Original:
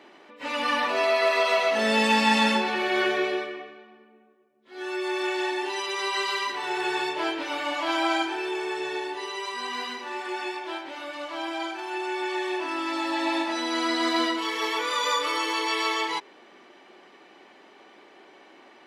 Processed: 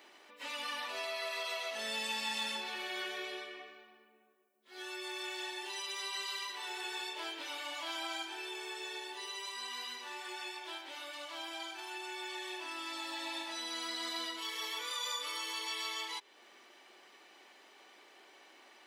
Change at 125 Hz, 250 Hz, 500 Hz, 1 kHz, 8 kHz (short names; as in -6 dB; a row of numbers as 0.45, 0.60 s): n/a, -21.0 dB, -19.0 dB, -16.5 dB, -5.5 dB